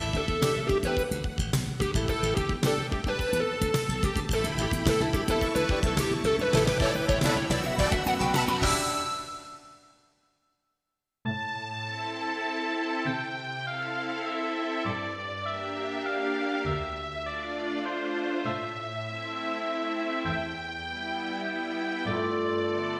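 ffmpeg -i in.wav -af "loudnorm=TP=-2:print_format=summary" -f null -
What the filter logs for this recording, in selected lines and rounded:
Input Integrated:    -28.8 LUFS
Input True Peak:     -10.3 dBTP
Input LRA:             6.1 LU
Input Threshold:     -39.0 LUFS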